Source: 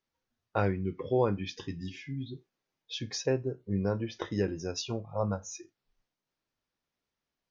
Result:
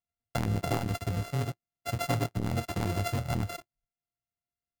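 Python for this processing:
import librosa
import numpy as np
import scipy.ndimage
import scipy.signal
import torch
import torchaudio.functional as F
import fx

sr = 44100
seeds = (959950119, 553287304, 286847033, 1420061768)

y = np.r_[np.sort(x[:len(x) // 64 * 64].reshape(-1, 64), axis=1).ravel(), x[len(x) // 64 * 64:]]
y = fx.peak_eq(y, sr, hz=87.0, db=10.0, octaves=1.5)
y = fx.leveller(y, sr, passes=3)
y = fx.stretch_grains(y, sr, factor=0.64, grain_ms=48.0)
y = fx.transformer_sat(y, sr, knee_hz=130.0)
y = y * 10.0 ** (-5.5 / 20.0)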